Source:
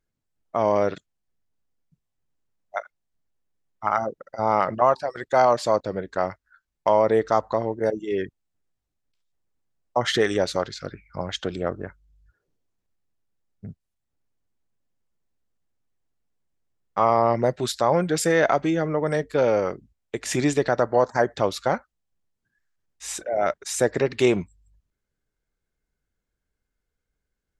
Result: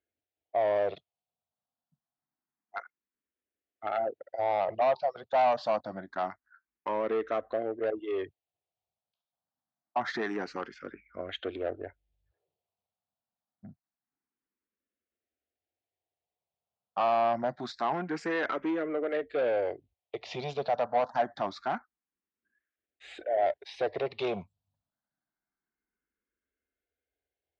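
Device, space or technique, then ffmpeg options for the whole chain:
barber-pole phaser into a guitar amplifier: -filter_complex "[0:a]asplit=2[s0][s1];[s1]afreqshift=0.26[s2];[s0][s2]amix=inputs=2:normalize=1,asoftclip=type=tanh:threshold=0.0841,highpass=110,equalizer=f=120:t=q:w=4:g=-9,equalizer=f=170:t=q:w=4:g=-7,equalizer=f=710:t=q:w=4:g=8,lowpass=f=4100:w=0.5412,lowpass=f=4100:w=1.3066,volume=0.668"

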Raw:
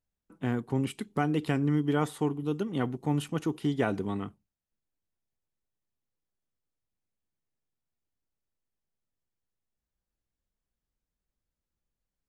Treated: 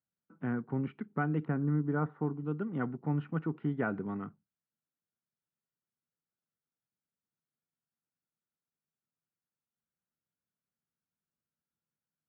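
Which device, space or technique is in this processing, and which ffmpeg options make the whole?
bass cabinet: -filter_complex "[0:a]highpass=f=86:w=0.5412,highpass=f=86:w=1.3066,equalizer=f=86:t=q:w=4:g=-5,equalizer=f=160:t=q:w=4:g=7,equalizer=f=230:t=q:w=4:g=4,equalizer=f=1400:t=q:w=4:g=8,lowpass=f=2100:w=0.5412,lowpass=f=2100:w=1.3066,asettb=1/sr,asplit=3[s0][s1][s2];[s0]atrim=end=1.454[s3];[s1]atrim=start=1.45:end=2.34,asetpts=PTS-STARTPTS,afade=t=in:d=0.004:c=qsin,afade=t=out:st=0.886:d=0.004:c=qsin,lowpass=1500[s4];[s2]atrim=start=2.336[s5];[s3][s4]acrossfade=d=0.004:c1=hsin:c2=qsin[s6];[s6][s5]acrossfade=d=0.004:c1=qsin:c2=hsin,volume=0.473"

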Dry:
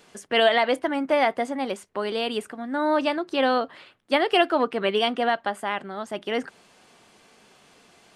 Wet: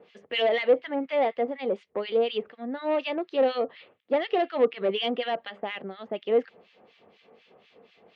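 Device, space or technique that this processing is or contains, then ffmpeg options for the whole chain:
guitar amplifier with harmonic tremolo: -filter_complex "[0:a]asettb=1/sr,asplit=3[s0][s1][s2];[s0]atrim=end=5.044[s3];[s1]atrim=start=5.04:end=5.44,asetpts=PTS-STARTPTS,afade=t=in:d=0.004:c=qsin,afade=t=out:st=0.396:d=0.004:c=qsin,equalizer=f=5800:w=0.56:g=5[s4];[s2]atrim=start=5.436[s5];[s3][s4]acrossfade=d=0.004:c1=hsin:c2=qsin[s6];[s6][s5]acrossfade=d=0.004:c1=qsin:c2=hsin,acrossover=split=1500[s7][s8];[s7]aeval=exprs='val(0)*(1-1/2+1/2*cos(2*PI*4.1*n/s))':c=same[s9];[s8]aeval=exprs='val(0)*(1-1/2-1/2*cos(2*PI*4.1*n/s))':c=same[s10];[s9][s10]amix=inputs=2:normalize=0,asoftclip=type=tanh:threshold=0.075,highpass=96,equalizer=f=130:t=q:w=4:g=-7,equalizer=f=300:t=q:w=4:g=-4,equalizer=f=480:t=q:w=4:g=9,equalizer=f=1000:t=q:w=4:g=-5,equalizer=f=1500:t=q:w=4:g=-9,lowpass=f=3600:w=0.5412,lowpass=f=3600:w=1.3066,volume=1.33"

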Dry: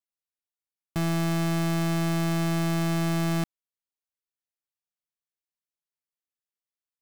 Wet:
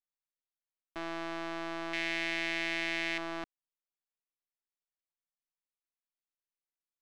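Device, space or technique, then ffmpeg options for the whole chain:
crystal radio: -filter_complex "[0:a]highpass=400,lowpass=3400,aeval=exprs='if(lt(val(0),0),0.251*val(0),val(0))':c=same,asettb=1/sr,asplit=3[s0][s1][s2];[s0]atrim=end=1.934[s3];[s1]atrim=start=1.93:end=3.18,asetpts=PTS-STARTPTS,afade=t=in:d=0.004:c=qsin,afade=t=out:st=1.246:d=0.004:c=qsin,highshelf=f=1600:t=q:w=3:g=8[s4];[s2]atrim=start=3.176[s5];[s3][s4]acrossfade=d=0.004:c1=hsin:c2=qsin[s6];[s6][s5]acrossfade=d=0.004:c1=qsin:c2=hsin,volume=0.75"

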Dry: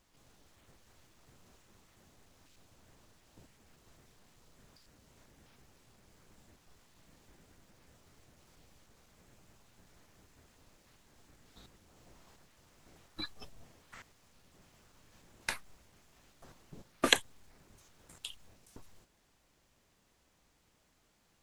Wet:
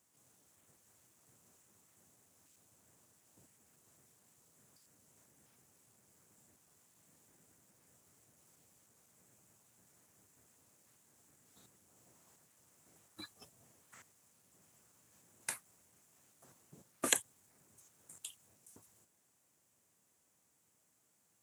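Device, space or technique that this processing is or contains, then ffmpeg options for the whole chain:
budget condenser microphone: -af "highpass=f=94:w=0.5412,highpass=f=94:w=1.3066,highshelf=f=5900:t=q:w=1.5:g=10,volume=0.422"

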